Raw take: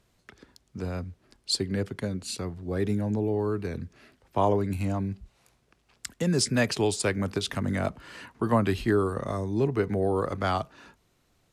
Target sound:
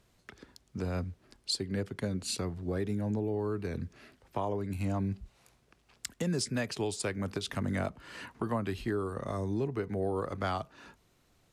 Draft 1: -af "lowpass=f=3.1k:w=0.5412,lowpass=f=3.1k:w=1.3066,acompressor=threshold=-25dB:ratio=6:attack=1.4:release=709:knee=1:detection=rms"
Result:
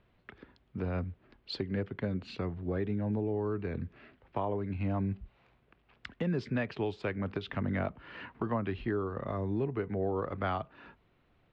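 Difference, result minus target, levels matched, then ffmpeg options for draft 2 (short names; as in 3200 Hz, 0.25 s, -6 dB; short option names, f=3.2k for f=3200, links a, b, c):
4000 Hz band -7.5 dB
-af "acompressor=threshold=-25dB:ratio=6:attack=1.4:release=709:knee=1:detection=rms"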